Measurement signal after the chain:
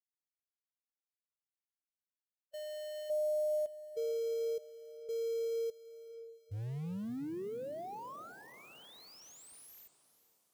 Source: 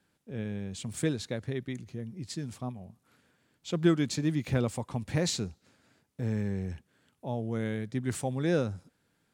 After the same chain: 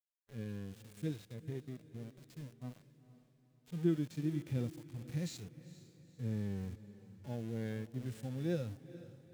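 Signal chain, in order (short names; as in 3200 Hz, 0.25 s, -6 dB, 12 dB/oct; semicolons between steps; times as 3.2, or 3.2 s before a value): sample gate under -37.5 dBFS; bell 1000 Hz -6 dB 1.5 oct; harmonic-percussive split percussive -18 dB; diffused feedback echo 0.463 s, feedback 45%, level -15.5 dB; gain -6 dB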